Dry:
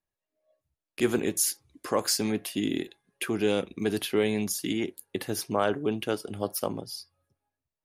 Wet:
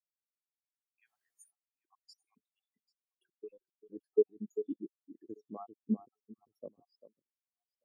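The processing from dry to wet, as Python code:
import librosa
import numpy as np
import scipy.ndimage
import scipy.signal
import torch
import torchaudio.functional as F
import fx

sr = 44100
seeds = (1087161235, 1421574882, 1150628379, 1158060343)

y = fx.spec_dropout(x, sr, seeds[0], share_pct=75)
y = scipy.signal.sosfilt(scipy.signal.butter(2, 84.0, 'highpass', fs=sr, output='sos'), y)
y = fx.tube_stage(y, sr, drive_db=30.0, bias=0.3, at=(3.43, 3.95), fade=0.02)
y = fx.echo_alternate(y, sr, ms=395, hz=1400.0, feedback_pct=54, wet_db=-4)
y = fx.dynamic_eq(y, sr, hz=300.0, q=0.94, threshold_db=-37.0, ratio=4.0, max_db=5)
y = fx.quant_dither(y, sr, seeds[1], bits=6, dither='triangular', at=(1.05, 1.51))
y = fx.low_shelf(y, sr, hz=120.0, db=10.0, at=(5.88, 6.8))
y = fx.spectral_expand(y, sr, expansion=2.5)
y = F.gain(torch.from_numpy(y), -5.0).numpy()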